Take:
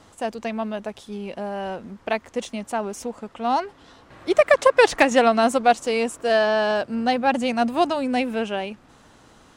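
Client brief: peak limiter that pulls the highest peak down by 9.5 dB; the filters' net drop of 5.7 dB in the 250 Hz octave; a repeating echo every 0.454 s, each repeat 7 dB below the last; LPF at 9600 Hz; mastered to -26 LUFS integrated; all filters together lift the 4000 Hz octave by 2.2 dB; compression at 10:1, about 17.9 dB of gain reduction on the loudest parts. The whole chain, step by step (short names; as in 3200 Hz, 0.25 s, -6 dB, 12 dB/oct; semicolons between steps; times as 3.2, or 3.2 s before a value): LPF 9600 Hz; bell 250 Hz -6.5 dB; bell 4000 Hz +3 dB; compressor 10:1, threshold -30 dBFS; limiter -27 dBFS; feedback echo 0.454 s, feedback 45%, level -7 dB; gain +10.5 dB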